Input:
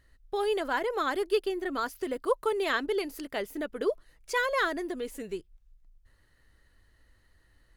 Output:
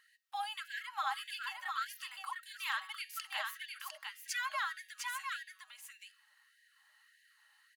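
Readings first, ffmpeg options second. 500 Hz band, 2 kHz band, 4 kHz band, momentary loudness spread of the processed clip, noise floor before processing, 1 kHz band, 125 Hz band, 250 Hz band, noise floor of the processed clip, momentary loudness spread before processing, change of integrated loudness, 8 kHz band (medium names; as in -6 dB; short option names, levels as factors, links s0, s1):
-30.5 dB, -5.5 dB, -2.5 dB, 14 LU, -65 dBFS, -6.5 dB, no reading, under -40 dB, -70 dBFS, 9 LU, -9.0 dB, +0.5 dB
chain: -filter_complex "[0:a]equalizer=f=2800:t=o:w=0.2:g=6,aecho=1:1:3.7:0.31,bandreject=f=186.8:t=h:w=4,bandreject=f=373.6:t=h:w=4,bandreject=f=560.4:t=h:w=4,bandreject=f=747.2:t=h:w=4,bandreject=f=934:t=h:w=4,bandreject=f=1120.8:t=h:w=4,bandreject=f=1307.6:t=h:w=4,bandreject=f=1494.4:t=h:w=4,bandreject=f=1681.2:t=h:w=4,bandreject=f=1868:t=h:w=4,bandreject=f=2054.8:t=h:w=4,bandreject=f=2241.6:t=h:w=4,bandreject=f=2428.4:t=h:w=4,bandreject=f=2615.2:t=h:w=4,bandreject=f=2802:t=h:w=4,bandreject=f=2988.8:t=h:w=4,bandreject=f=3175.6:t=h:w=4,bandreject=f=3362.4:t=h:w=4,bandreject=f=3549.2:t=h:w=4,bandreject=f=3736:t=h:w=4,bandreject=f=3922.8:t=h:w=4,bandreject=f=4109.6:t=h:w=4,bandreject=f=4296.4:t=h:w=4,bandreject=f=4483.2:t=h:w=4,bandreject=f=4670:t=h:w=4,bandreject=f=4856.8:t=h:w=4,bandreject=f=5043.6:t=h:w=4,bandreject=f=5230.4:t=h:w=4,bandreject=f=5417.2:t=h:w=4,bandreject=f=5604:t=h:w=4,bandreject=f=5790.8:t=h:w=4,bandreject=f=5977.6:t=h:w=4,bandreject=f=6164.4:t=h:w=4,bandreject=f=6351.2:t=h:w=4,bandreject=f=6538:t=h:w=4,acompressor=threshold=0.0158:ratio=3,asuperstop=centerf=700:order=20:qfactor=5.4,asplit=2[s0][s1];[s1]aecho=0:1:703:0.631[s2];[s0][s2]amix=inputs=2:normalize=0,afftfilt=real='re*gte(b*sr/1024,600*pow(1600/600,0.5+0.5*sin(2*PI*1.7*pts/sr)))':imag='im*gte(b*sr/1024,600*pow(1600/600,0.5+0.5*sin(2*PI*1.7*pts/sr)))':win_size=1024:overlap=0.75,volume=1.19"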